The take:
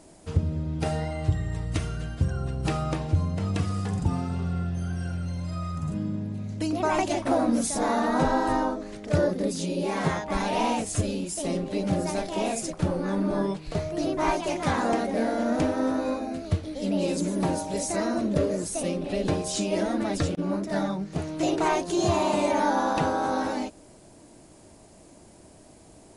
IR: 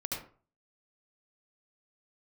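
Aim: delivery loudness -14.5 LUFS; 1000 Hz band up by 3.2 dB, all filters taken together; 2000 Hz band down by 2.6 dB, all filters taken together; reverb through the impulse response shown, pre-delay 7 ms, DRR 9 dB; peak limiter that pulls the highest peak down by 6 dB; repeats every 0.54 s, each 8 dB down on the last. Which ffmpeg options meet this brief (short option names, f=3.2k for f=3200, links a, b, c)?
-filter_complex "[0:a]equalizer=f=1k:t=o:g=5,equalizer=f=2k:t=o:g=-5.5,alimiter=limit=-17dB:level=0:latency=1,aecho=1:1:540|1080|1620|2160|2700:0.398|0.159|0.0637|0.0255|0.0102,asplit=2[a][b];[1:a]atrim=start_sample=2205,adelay=7[c];[b][c]afir=irnorm=-1:irlink=0,volume=-11.5dB[d];[a][d]amix=inputs=2:normalize=0,volume=12dB"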